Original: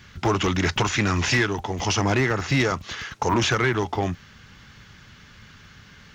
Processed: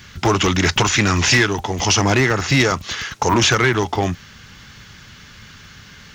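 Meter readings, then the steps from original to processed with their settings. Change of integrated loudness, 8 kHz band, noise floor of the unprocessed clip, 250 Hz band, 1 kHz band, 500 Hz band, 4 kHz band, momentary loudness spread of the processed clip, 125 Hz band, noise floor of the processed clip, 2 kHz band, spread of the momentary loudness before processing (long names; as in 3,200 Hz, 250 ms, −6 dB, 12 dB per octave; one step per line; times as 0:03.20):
+6.5 dB, +10.0 dB, −49 dBFS, +5.0 dB, +5.5 dB, +5.0 dB, +8.5 dB, 8 LU, +5.0 dB, −43 dBFS, +6.5 dB, 7 LU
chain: high-shelf EQ 3,800 Hz +7 dB
level +5 dB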